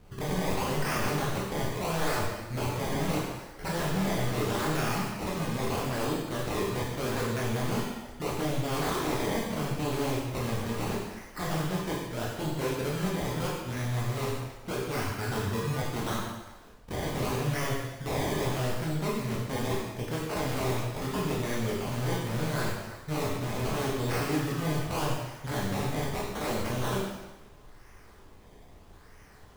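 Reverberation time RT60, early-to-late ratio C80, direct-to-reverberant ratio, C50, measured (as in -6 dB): 1.1 s, 3.0 dB, -4.5 dB, 0.5 dB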